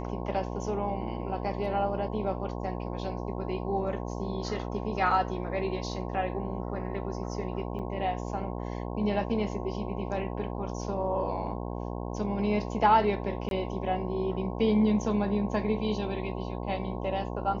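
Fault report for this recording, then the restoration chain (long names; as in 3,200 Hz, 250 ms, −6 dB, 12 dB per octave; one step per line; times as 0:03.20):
mains buzz 60 Hz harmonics 18 −35 dBFS
0:07.79–0:07.80: drop-out 6.2 ms
0:13.49–0:13.51: drop-out 22 ms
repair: hum removal 60 Hz, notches 18
repair the gap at 0:07.79, 6.2 ms
repair the gap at 0:13.49, 22 ms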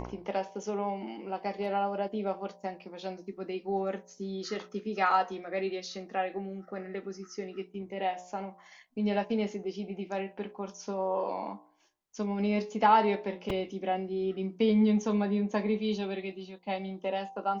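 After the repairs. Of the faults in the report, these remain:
none of them is left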